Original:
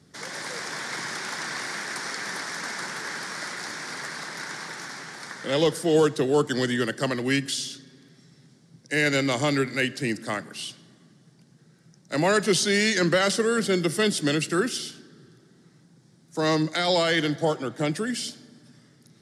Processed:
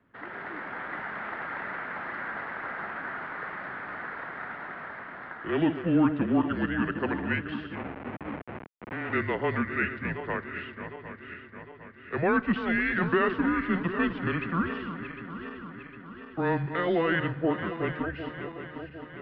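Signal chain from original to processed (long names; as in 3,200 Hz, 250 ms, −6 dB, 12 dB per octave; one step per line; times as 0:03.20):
feedback delay that plays each chunk backwards 378 ms, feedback 73%, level −10 dB
0:07.75–0:09.13: comparator with hysteresis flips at −31 dBFS
single-sideband voice off tune −170 Hz 340–2,600 Hz
level −2 dB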